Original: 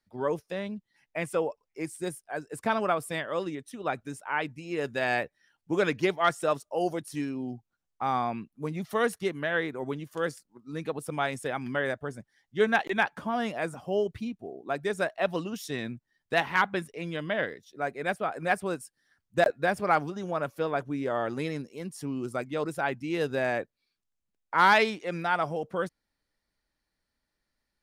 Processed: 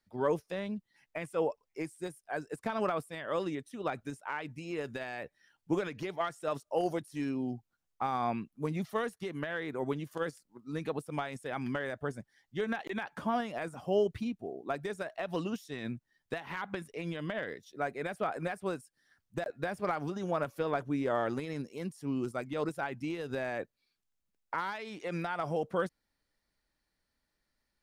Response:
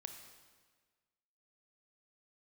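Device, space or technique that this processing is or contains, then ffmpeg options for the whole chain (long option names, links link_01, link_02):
de-esser from a sidechain: -filter_complex "[0:a]asplit=2[link_01][link_02];[link_02]highpass=5600,apad=whole_len=1227257[link_03];[link_01][link_03]sidechaincompress=threshold=-51dB:ratio=10:attack=0.55:release=94"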